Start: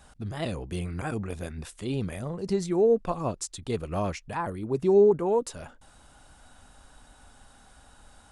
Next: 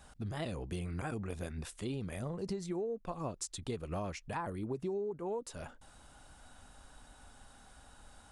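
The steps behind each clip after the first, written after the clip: compressor 16:1, threshold -31 dBFS, peak gain reduction 17 dB; gain -3 dB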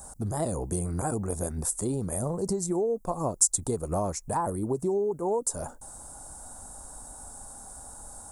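EQ curve 220 Hz 0 dB, 900 Hz +4 dB, 2900 Hz -20 dB, 7800 Hz +14 dB; gain +8 dB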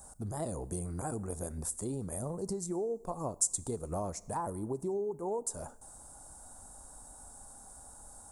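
Schroeder reverb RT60 0.97 s, combs from 26 ms, DRR 19.5 dB; gain -7.5 dB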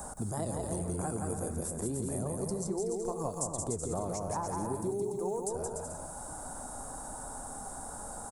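on a send: bouncing-ball echo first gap 0.17 s, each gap 0.7×, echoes 5; on the sum: three-band squash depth 70%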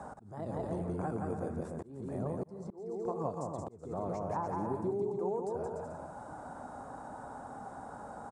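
BPF 100–2400 Hz; auto swell 0.384 s

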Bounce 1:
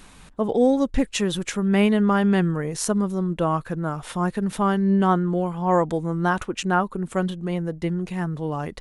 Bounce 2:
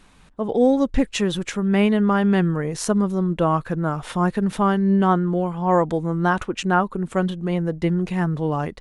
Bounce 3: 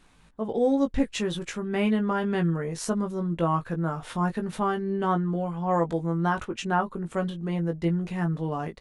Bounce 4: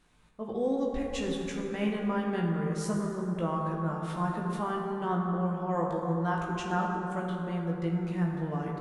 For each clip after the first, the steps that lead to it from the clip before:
high shelf 7900 Hz -9 dB; AGC gain up to 10 dB; gain -5 dB
doubler 18 ms -5.5 dB; gain -7 dB
plate-style reverb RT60 3.5 s, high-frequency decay 0.4×, DRR 0 dB; gain -7.5 dB

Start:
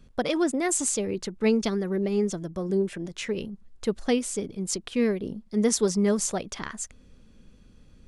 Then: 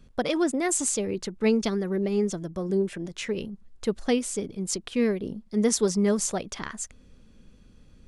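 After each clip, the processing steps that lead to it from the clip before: nothing audible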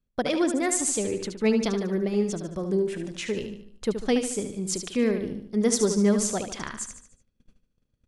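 gate -47 dBFS, range -26 dB; on a send: feedback echo 74 ms, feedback 45%, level -8 dB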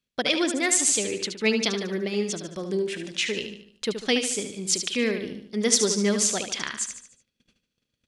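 weighting filter D; gain -1 dB

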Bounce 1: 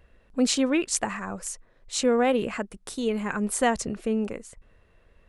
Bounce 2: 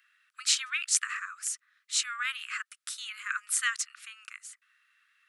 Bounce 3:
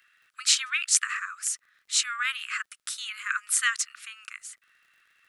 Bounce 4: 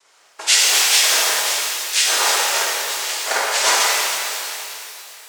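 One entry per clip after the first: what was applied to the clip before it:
steep high-pass 1200 Hz 96 dB/oct; gain +1.5 dB
crackle 56/s -58 dBFS; gain +4 dB
noise vocoder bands 3; shimmer reverb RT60 2.7 s, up +12 st, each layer -8 dB, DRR -7 dB; gain +4 dB

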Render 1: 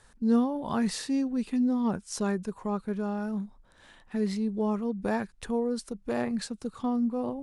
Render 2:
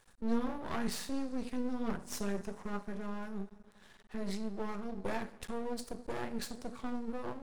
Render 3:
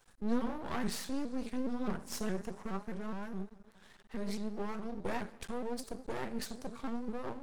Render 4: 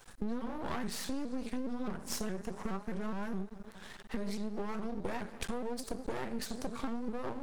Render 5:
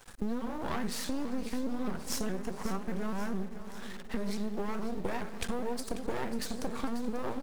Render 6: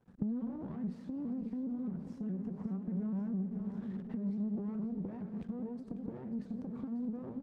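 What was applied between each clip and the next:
harmonic-percussive split percussive +3 dB; two-slope reverb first 0.37 s, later 3.1 s, from -20 dB, DRR 7 dB; half-wave rectifier; gain -4 dB
shaped vibrato saw up 4.8 Hz, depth 160 cents
compressor 10:1, threshold -42 dBFS, peak gain reduction 17 dB; gain +10 dB
in parallel at -9 dB: requantised 8-bit, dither none; on the sum: feedback echo 0.54 s, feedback 58%, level -13 dB
recorder AGC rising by 49 dB/s; band-pass 180 Hz, Q 2; in parallel at -5.5 dB: soft clip -31 dBFS, distortion -17 dB; on the sum: gain -4.5 dB

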